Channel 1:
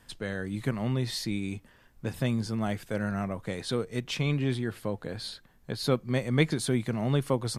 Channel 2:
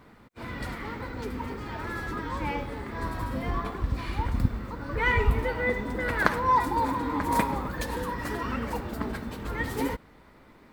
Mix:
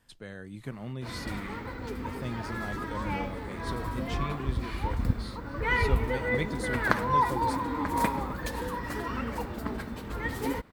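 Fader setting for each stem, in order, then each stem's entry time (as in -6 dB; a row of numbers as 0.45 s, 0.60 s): -9.0 dB, -2.0 dB; 0.00 s, 0.65 s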